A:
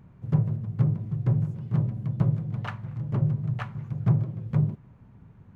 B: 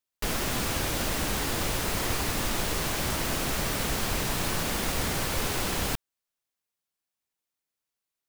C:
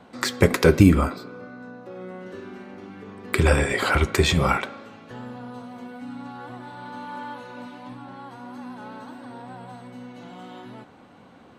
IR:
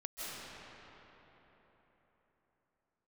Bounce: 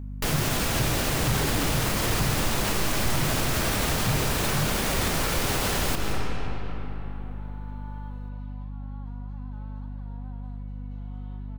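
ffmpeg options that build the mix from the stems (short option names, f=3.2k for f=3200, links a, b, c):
-filter_complex "[0:a]volume=-3.5dB[a];[1:a]volume=2dB,asplit=2[b][c];[c]volume=-3.5dB[d];[2:a]lowpass=5k,equalizer=f=940:w=1.8:g=6,adelay=750,volume=-17dB[e];[3:a]atrim=start_sample=2205[f];[d][f]afir=irnorm=-1:irlink=0[g];[a][b][e][g]amix=inputs=4:normalize=0,aeval=exprs='val(0)+0.02*(sin(2*PI*50*n/s)+sin(2*PI*2*50*n/s)/2+sin(2*PI*3*50*n/s)/3+sin(2*PI*4*50*n/s)/4+sin(2*PI*5*50*n/s)/5)':c=same,asoftclip=type=hard:threshold=-12dB,alimiter=limit=-15.5dB:level=0:latency=1:release=58"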